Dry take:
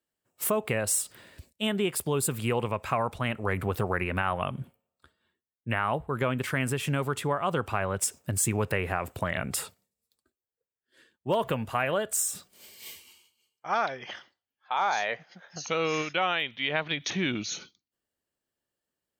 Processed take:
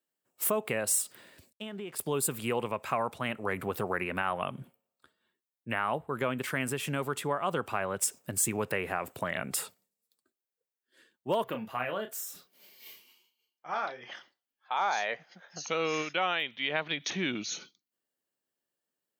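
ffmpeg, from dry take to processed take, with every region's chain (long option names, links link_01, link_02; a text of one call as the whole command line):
ffmpeg -i in.wav -filter_complex "[0:a]asettb=1/sr,asplit=3[link_01][link_02][link_03];[link_01]atrim=end=1.534[link_04];[link_02]atrim=start=1.53:end=1.99,asetpts=PTS-STARTPTS,afade=type=in:duration=0.004:curve=qsin,afade=type=out:start_time=0.456:duration=0.004:curve=qsin,lowpass=frequency=3100:poles=1,aeval=exprs='sgn(val(0))*max(abs(val(0))-0.00133,0)':channel_layout=same,acompressor=threshold=-32dB:ratio=12:attack=3.2:release=140:knee=1:detection=peak[link_05];[link_03]atrim=start=1.986[link_06];[link_04][link_05]acrossfade=duration=0.004:curve1=hsin:curve2=qsin[link_07];[link_07][link_06]acrossfade=duration=0.004:curve1=qsin:curve2=hsin,asettb=1/sr,asplit=3[link_08][link_09][link_10];[link_08]atrim=end=11.444[link_11];[link_09]atrim=start=11.44:end=14.12,asetpts=PTS-STARTPTS,afade=type=in:duration=0.004:curve=qsin,afade=type=out:start_time=2.676:duration=0.004:curve=qsin,equalizer=frequency=8400:width=1.8:gain=-12,flanger=delay=1.8:depth=8.3:regen=47:speed=1:shape=triangular,asplit=2[link_12][link_13];[link_13]adelay=32,volume=-8dB[link_14];[link_12][link_14]amix=inputs=2:normalize=0,atrim=end_sample=118188[link_15];[link_10]atrim=start=14.116[link_16];[link_11][link_15]acrossfade=duration=0.004:curve1=hsin:curve2=qsin[link_17];[link_17][link_16]acrossfade=duration=0.004:curve1=qsin:curve2=hsin,highpass=170,highshelf=frequency=12000:gain=5.5,volume=-2.5dB" out.wav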